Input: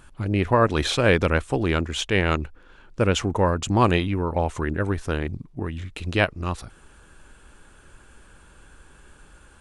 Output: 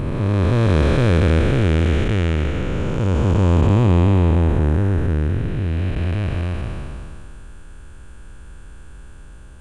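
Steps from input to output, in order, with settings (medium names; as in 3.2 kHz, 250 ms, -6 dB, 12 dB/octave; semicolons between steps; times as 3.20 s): spectral blur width 893 ms; bass shelf 210 Hz +12 dB; trim +3.5 dB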